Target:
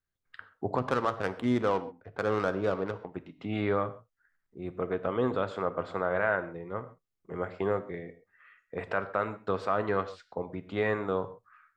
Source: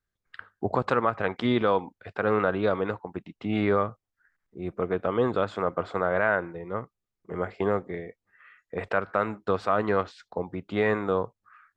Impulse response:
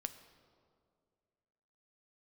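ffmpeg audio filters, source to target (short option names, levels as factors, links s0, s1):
-filter_complex "[0:a]asplit=3[s0][s1][s2];[s0]afade=t=out:st=0.77:d=0.02[s3];[s1]adynamicsmooth=sensitivity=2:basefreq=980,afade=t=in:st=0.77:d=0.02,afade=t=out:st=3.11:d=0.02[s4];[s2]afade=t=in:st=3.11:d=0.02[s5];[s3][s4][s5]amix=inputs=3:normalize=0[s6];[1:a]atrim=start_sample=2205,atrim=end_sample=6174[s7];[s6][s7]afir=irnorm=-1:irlink=0,volume=0.841"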